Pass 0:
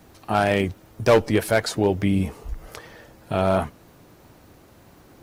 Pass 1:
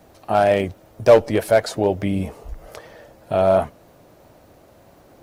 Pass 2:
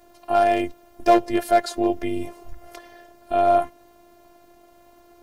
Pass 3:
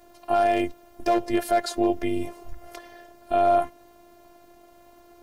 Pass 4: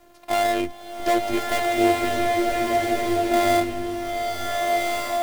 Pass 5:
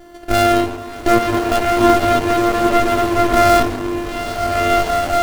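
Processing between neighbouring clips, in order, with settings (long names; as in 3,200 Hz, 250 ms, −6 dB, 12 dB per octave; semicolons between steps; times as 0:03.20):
parametric band 610 Hz +9.5 dB 0.74 octaves; level −2 dB
phases set to zero 346 Hz
brickwall limiter −10 dBFS, peak gain reduction 7.5 dB
gap after every zero crossing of 0.21 ms; slow-attack reverb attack 1,550 ms, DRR −2.5 dB
feedback delay network reverb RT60 1.5 s, low-frequency decay 0.8×, high-frequency decay 0.6×, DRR 1.5 dB; windowed peak hold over 33 samples; level +7.5 dB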